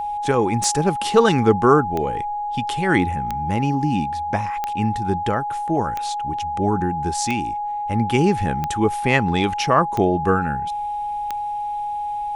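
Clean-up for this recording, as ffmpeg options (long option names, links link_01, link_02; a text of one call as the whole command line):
ffmpeg -i in.wav -af "adeclick=threshold=4,bandreject=frequency=830:width=30" out.wav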